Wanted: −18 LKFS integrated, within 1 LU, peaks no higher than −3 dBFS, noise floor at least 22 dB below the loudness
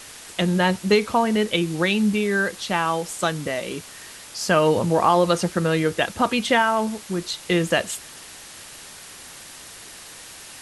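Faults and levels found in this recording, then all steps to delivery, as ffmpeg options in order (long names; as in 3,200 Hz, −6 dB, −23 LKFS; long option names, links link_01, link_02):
background noise floor −42 dBFS; target noise floor −44 dBFS; integrated loudness −21.5 LKFS; sample peak −5.5 dBFS; target loudness −18.0 LKFS
→ -af "afftdn=noise_reduction=6:noise_floor=-42"
-af "volume=3.5dB,alimiter=limit=-3dB:level=0:latency=1"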